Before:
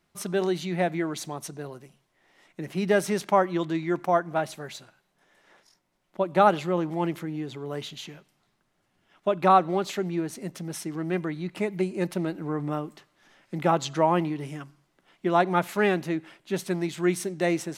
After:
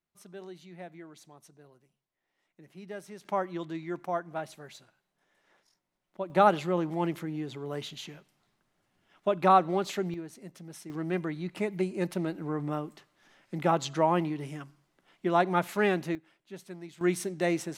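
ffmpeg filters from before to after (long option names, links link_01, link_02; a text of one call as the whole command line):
ffmpeg -i in.wav -af "asetnsamples=nb_out_samples=441:pad=0,asendcmd='3.25 volume volume -9dB;6.3 volume volume -2.5dB;10.14 volume volume -11dB;10.9 volume volume -3dB;16.15 volume volume -15.5dB;17.01 volume volume -3dB',volume=-19dB" out.wav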